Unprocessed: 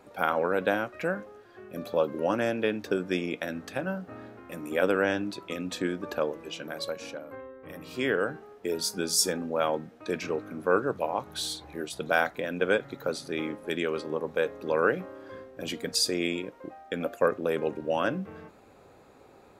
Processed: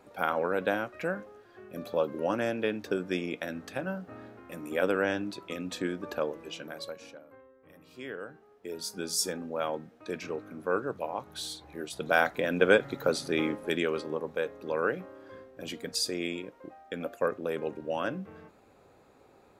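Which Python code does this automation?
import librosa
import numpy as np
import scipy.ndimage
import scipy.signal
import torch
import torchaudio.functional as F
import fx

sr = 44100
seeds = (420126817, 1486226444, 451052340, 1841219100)

y = fx.gain(x, sr, db=fx.line((6.56, -2.5), (7.45, -13.0), (8.29, -13.0), (9.05, -5.0), (11.63, -5.0), (12.5, 3.5), (13.45, 3.5), (14.44, -4.5)))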